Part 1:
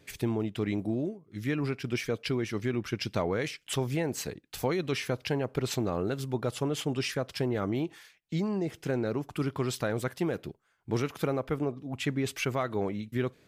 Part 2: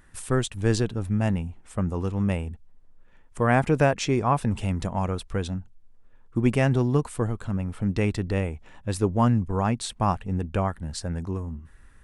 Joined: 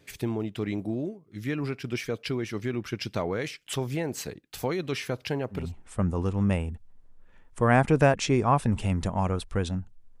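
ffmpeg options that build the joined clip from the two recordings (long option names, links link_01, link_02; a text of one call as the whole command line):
ffmpeg -i cue0.wav -i cue1.wav -filter_complex "[0:a]apad=whole_dur=10.2,atrim=end=10.2,atrim=end=5.72,asetpts=PTS-STARTPTS[link_01];[1:a]atrim=start=1.29:end=5.99,asetpts=PTS-STARTPTS[link_02];[link_01][link_02]acrossfade=duration=0.22:curve1=tri:curve2=tri" out.wav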